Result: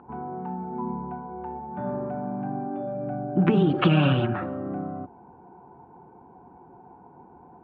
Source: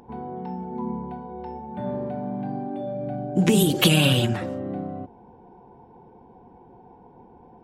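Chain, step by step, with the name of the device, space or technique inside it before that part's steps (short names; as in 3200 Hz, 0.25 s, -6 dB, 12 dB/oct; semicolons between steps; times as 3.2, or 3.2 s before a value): bass cabinet (speaker cabinet 82–2200 Hz, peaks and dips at 110 Hz -5 dB, 220 Hz -5 dB, 490 Hz -8 dB, 1300 Hz +8 dB, 2000 Hz -7 dB); gain +1.5 dB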